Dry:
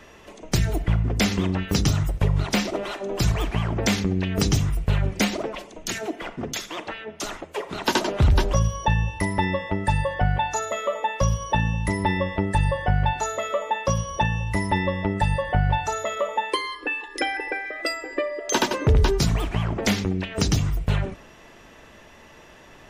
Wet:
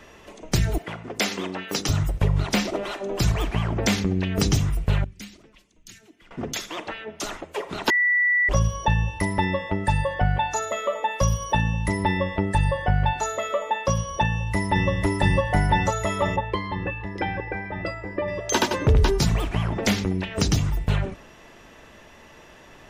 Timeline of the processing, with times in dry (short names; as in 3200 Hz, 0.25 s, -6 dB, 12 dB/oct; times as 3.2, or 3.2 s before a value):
0.78–1.89 HPF 340 Hz
5.04–6.31 passive tone stack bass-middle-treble 6-0-2
7.9–8.49 bleep 1960 Hz -17 dBFS
11.11–11.62 high shelf 9400 Hz +12 dB
14.25–14.9 echo throw 0.5 s, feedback 80%, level -0.5 dB
16.36–18.28 tape spacing loss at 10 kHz 28 dB